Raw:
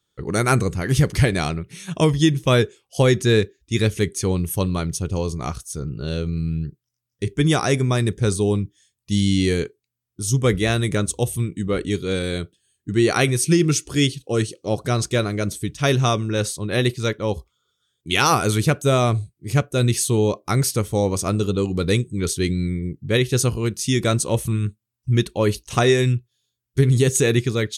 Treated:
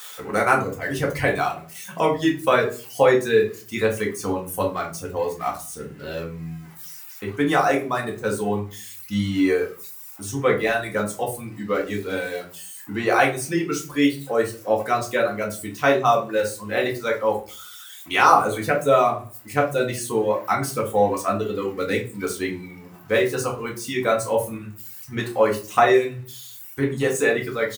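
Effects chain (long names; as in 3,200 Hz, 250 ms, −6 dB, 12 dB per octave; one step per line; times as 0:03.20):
spike at every zero crossing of −21.5 dBFS
high-pass filter 210 Hz 6 dB per octave
on a send: repeating echo 97 ms, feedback 32%, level −14.5 dB
on the sum: reverb reduction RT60 1.7 s
three-way crossover with the lows and the highs turned down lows −12 dB, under 550 Hz, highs −17 dB, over 2,000 Hz
rectangular room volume 190 cubic metres, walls furnished, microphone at 2 metres
level +3.5 dB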